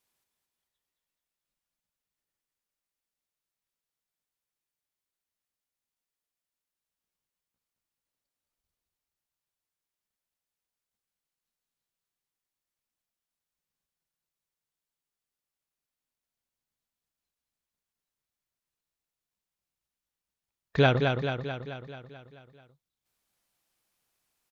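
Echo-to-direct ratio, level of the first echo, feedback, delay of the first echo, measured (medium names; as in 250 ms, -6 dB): -3.0 dB, -5.0 dB, 60%, 218 ms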